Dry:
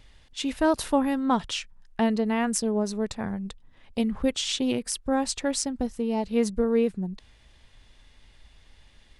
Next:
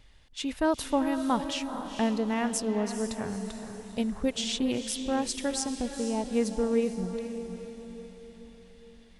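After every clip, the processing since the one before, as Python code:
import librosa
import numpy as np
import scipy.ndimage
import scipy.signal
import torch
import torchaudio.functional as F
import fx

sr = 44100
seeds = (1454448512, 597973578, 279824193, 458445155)

y = fx.echo_diffused(x, sr, ms=458, feedback_pct=49, wet_db=-8.5)
y = y * librosa.db_to_amplitude(-3.5)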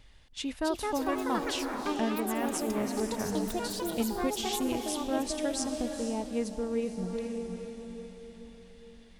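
y = fx.rider(x, sr, range_db=4, speed_s=0.5)
y = fx.echo_pitch(y, sr, ms=370, semitones=5, count=2, db_per_echo=-3.0)
y = y * librosa.db_to_amplitude(-3.5)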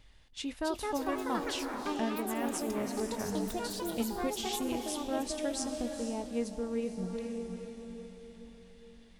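y = fx.doubler(x, sr, ms=21.0, db=-13.5)
y = y * librosa.db_to_amplitude(-3.0)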